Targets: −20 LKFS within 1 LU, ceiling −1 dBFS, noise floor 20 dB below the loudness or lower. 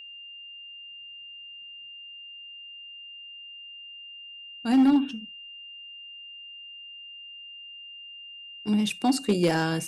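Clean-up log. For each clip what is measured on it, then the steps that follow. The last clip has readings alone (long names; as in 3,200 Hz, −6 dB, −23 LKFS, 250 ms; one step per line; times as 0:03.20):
share of clipped samples 0.5%; peaks flattened at −15.0 dBFS; interfering tone 2,800 Hz; level of the tone −41 dBFS; integrated loudness −24.5 LKFS; sample peak −15.0 dBFS; target loudness −20.0 LKFS
→ clipped peaks rebuilt −15 dBFS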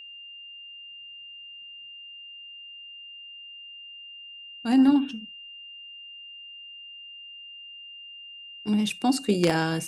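share of clipped samples 0.0%; interfering tone 2,800 Hz; level of the tone −41 dBFS
→ notch filter 2,800 Hz, Q 30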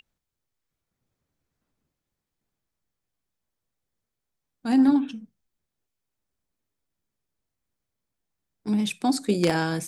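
interfering tone none found; integrated loudness −23.5 LKFS; sample peak −6.0 dBFS; target loudness −20.0 LKFS
→ level +3.5 dB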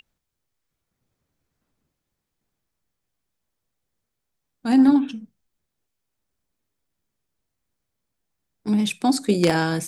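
integrated loudness −20.0 LKFS; sample peak −2.5 dBFS; background noise floor −81 dBFS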